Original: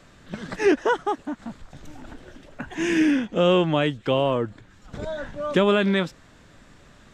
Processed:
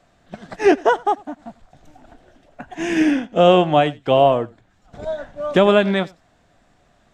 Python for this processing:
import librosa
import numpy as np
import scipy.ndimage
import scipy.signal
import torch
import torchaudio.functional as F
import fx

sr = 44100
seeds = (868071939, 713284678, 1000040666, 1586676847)

y = fx.peak_eq(x, sr, hz=710.0, db=12.5, octaves=0.38)
y = y + 10.0 ** (-17.0 / 20.0) * np.pad(y, (int(93 * sr / 1000.0), 0))[:len(y)]
y = fx.upward_expand(y, sr, threshold_db=-39.0, expansion=1.5)
y = F.gain(torch.from_numpy(y), 4.5).numpy()